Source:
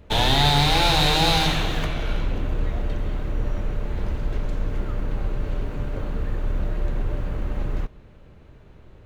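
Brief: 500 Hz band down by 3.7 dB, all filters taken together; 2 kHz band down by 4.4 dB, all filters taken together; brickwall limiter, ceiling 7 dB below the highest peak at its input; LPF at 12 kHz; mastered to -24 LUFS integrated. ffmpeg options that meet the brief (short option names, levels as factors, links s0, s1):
-af "lowpass=12000,equalizer=f=500:t=o:g=-4.5,equalizer=f=2000:t=o:g=-5.5,volume=1.5,alimiter=limit=0.355:level=0:latency=1"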